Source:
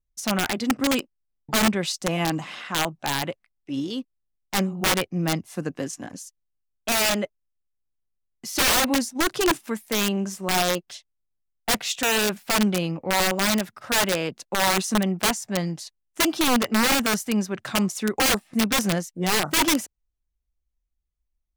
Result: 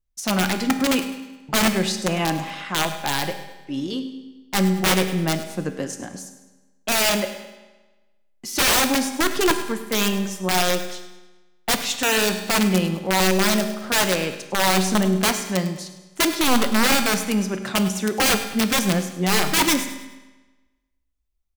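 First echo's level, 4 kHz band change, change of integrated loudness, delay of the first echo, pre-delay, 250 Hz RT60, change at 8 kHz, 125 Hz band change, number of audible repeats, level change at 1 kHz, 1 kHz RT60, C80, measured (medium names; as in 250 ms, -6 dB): -14.5 dB, +2.5 dB, +2.5 dB, 103 ms, 5 ms, 1.2 s, +2.0 dB, +3.5 dB, 2, +2.0 dB, 1.2 s, 10.0 dB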